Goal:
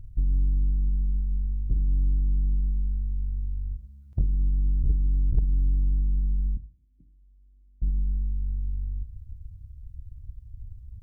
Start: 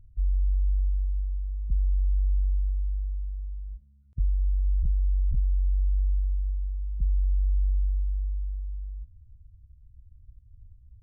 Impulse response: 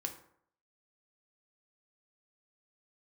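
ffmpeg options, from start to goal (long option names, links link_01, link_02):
-filter_complex "[0:a]acompressor=threshold=-37dB:ratio=2.5,asettb=1/sr,asplit=3[link_01][link_02][link_03];[link_01]atrim=end=6.574[link_04];[link_02]atrim=start=6.57:end=7.82,asetpts=PTS-STARTPTS,afade=type=in:duration=0.004:curve=qsin,afade=type=out:start_time=1.246:duration=0.004:curve=qsin,asplit=3[link_05][link_06][link_07];[link_05]bandpass=frequency=270:width_type=q:width=8,volume=0dB[link_08];[link_06]bandpass=frequency=2290:width_type=q:width=8,volume=-6dB[link_09];[link_07]bandpass=frequency=3010:width_type=q:width=8,volume=-9dB[link_10];[link_08][link_09][link_10]amix=inputs=3:normalize=0[link_11];[link_03]atrim=start=7.816[link_12];[link_04][link_11]acrossfade=duration=0.004:curve1=hsin:curve2=qsin[link_13];[link_13][link_12]acrossfade=duration=0.004:curve1=qsin:curve2=hsin,asplit=2[link_14][link_15];[1:a]atrim=start_sample=2205[link_16];[link_15][link_16]afir=irnorm=-1:irlink=0,volume=4dB[link_17];[link_14][link_17]amix=inputs=2:normalize=0,aeval=exprs='0.119*(cos(1*acos(clip(val(0)/0.119,-1,1)))-cos(1*PI/2))+0.015*(cos(3*acos(clip(val(0)/0.119,-1,1)))-cos(3*PI/2))+0.00531*(cos(8*acos(clip(val(0)/0.119,-1,1)))-cos(8*PI/2))':channel_layout=same,volume=5.5dB"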